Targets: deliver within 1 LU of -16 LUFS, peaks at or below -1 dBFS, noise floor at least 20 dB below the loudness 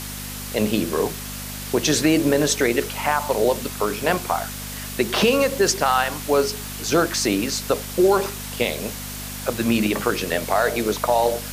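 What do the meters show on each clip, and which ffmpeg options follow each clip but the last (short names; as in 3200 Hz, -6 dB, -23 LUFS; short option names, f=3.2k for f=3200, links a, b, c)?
hum 50 Hz; harmonics up to 250 Hz; hum level -33 dBFS; noise floor -32 dBFS; noise floor target -42 dBFS; loudness -21.5 LUFS; peak -4.5 dBFS; loudness target -16.0 LUFS
-> -af "bandreject=f=50:t=h:w=4,bandreject=f=100:t=h:w=4,bandreject=f=150:t=h:w=4,bandreject=f=200:t=h:w=4,bandreject=f=250:t=h:w=4"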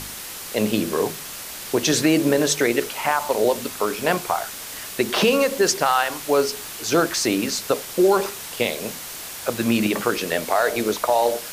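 hum none; noise floor -35 dBFS; noise floor target -42 dBFS
-> -af "afftdn=nr=7:nf=-35"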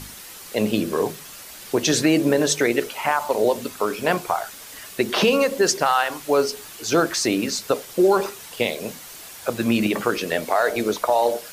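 noise floor -40 dBFS; noise floor target -42 dBFS
-> -af "afftdn=nr=6:nf=-40"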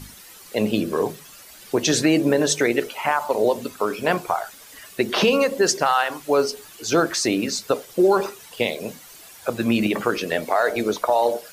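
noise floor -45 dBFS; loudness -22.0 LUFS; peak -5.5 dBFS; loudness target -16.0 LUFS
-> -af "volume=6dB,alimiter=limit=-1dB:level=0:latency=1"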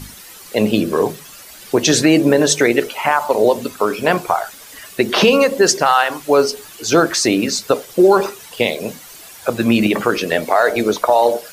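loudness -16.0 LUFS; peak -1.0 dBFS; noise floor -39 dBFS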